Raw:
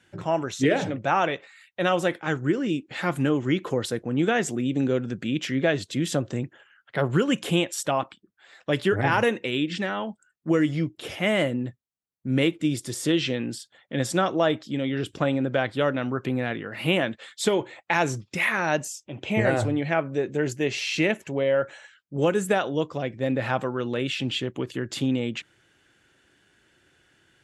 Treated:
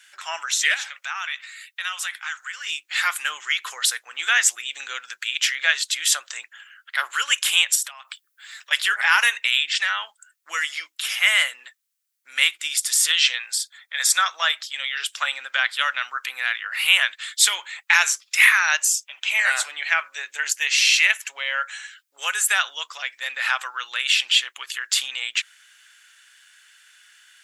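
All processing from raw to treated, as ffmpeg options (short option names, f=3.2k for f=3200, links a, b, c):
-filter_complex "[0:a]asettb=1/sr,asplit=3[a][b][c];[a]atrim=end=0.744[d];[b]atrim=start=0.74:end=2.67,asetpts=PTS-STARTPTS,afade=t=in:d=0.004:c=qsin,afade=t=out:st=1.926:d=0.004:c=qsin,highpass=880,acompressor=threshold=-39dB:ratio=2:attack=3.2:release=140:knee=1:detection=peak[e];[c]atrim=start=2.666[f];[d][e]acrossfade=d=0.004:c1=hsin:c2=qsin[g];[g][f]acrossfade=d=0.004:c1=qsin:c2=hsin,asettb=1/sr,asplit=3[h][i][j];[h]atrim=end=7.754[k];[i]atrim=start=7.75:end=8.71,asetpts=PTS-STARTPTS,afade=t=in:d=0.004:c=qsin,afade=t=out:st=0.956:d=0.004:c=qsin,highshelf=f=10k:g=8,acompressor=threshold=-35dB:ratio=20:attack=3.2:release=140:knee=1:detection=peak[l];[j]atrim=start=8.706[m];[k][l]acrossfade=d=0.004:c1=hsin:c2=qsin[n];[n][m]acrossfade=d=0.004:c1=qsin:c2=hsin,asettb=1/sr,asplit=3[o][p][q];[o]atrim=end=13.384[r];[p]atrim=start=13.38:end=14.42,asetpts=PTS-STARTPTS,afade=t=in:d=0.004:c=qsin,afade=t=out:st=1.036:d=0.004:c=qsin,highpass=530,bandreject=f=2.9k:w=5.6[s];[q]atrim=start=14.416[t];[r][s]acrossfade=d=0.004:c1=hsin:c2=qsin[u];[u][t]acrossfade=d=0.004:c1=qsin:c2=hsin,highpass=f=1.3k:w=0.5412,highpass=f=1.3k:w=1.3066,highshelf=f=4.9k:g=9,acontrast=25,volume=4.5dB"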